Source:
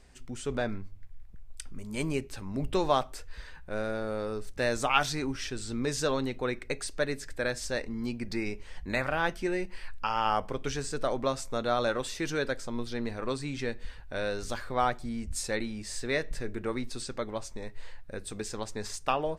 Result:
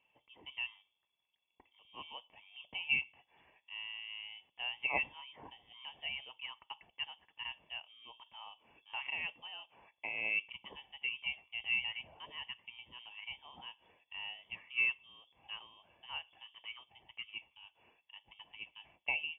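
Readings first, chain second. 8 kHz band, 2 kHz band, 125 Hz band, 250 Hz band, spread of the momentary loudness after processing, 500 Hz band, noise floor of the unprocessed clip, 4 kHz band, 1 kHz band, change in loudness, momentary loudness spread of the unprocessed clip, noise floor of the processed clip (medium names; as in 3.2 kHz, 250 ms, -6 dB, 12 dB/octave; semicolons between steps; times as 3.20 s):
under -40 dB, -3.0 dB, -28.0 dB, -30.0 dB, 21 LU, -26.5 dB, -46 dBFS, -2.5 dB, -18.0 dB, -7.5 dB, 13 LU, -83 dBFS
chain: vowel filter a; distance through air 99 m; frequency inversion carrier 3.4 kHz; high-pass 49 Hz; tilt shelf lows +6 dB, about 750 Hz; trim +4.5 dB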